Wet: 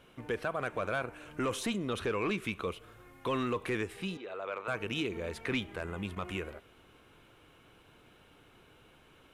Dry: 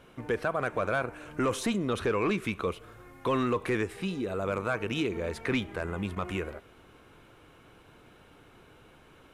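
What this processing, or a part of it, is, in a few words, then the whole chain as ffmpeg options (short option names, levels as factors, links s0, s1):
presence and air boost: -filter_complex "[0:a]asettb=1/sr,asplit=3[s0][s1][s2];[s0]atrim=end=4.174[s3];[s1]atrim=start=4.17:end=4.68,asetpts=PTS-STARTPTS,afade=t=in:d=0.004:c=qsin,afade=t=out:st=0.506:d=0.004:c=qsin,acrossover=split=410 4300:gain=0.0794 1 0.0891[s4][s5][s6];[s4][s5][s6]amix=inputs=3:normalize=0[s7];[s2]atrim=start=4.676[s8];[s3][s7]acrossfade=d=0.004:c1=hsin:c2=qsin[s9];[s9][s8]acrossfade=d=0.004:c1=qsin:c2=hsin,equalizer=f=3000:t=o:w=0.83:g=4.5,highshelf=f=9300:g=4.5,volume=0.562"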